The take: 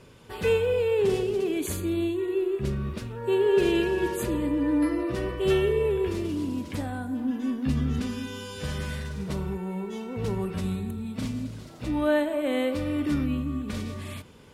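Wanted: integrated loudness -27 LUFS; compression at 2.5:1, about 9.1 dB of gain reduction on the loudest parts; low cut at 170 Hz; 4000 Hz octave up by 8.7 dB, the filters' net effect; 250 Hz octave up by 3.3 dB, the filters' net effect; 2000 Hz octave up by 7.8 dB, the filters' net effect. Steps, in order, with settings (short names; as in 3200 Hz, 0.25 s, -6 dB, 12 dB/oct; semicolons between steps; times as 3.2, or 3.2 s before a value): HPF 170 Hz; bell 250 Hz +5 dB; bell 2000 Hz +7.5 dB; bell 4000 Hz +8.5 dB; compressor 2.5:1, threshold -30 dBFS; gain +4 dB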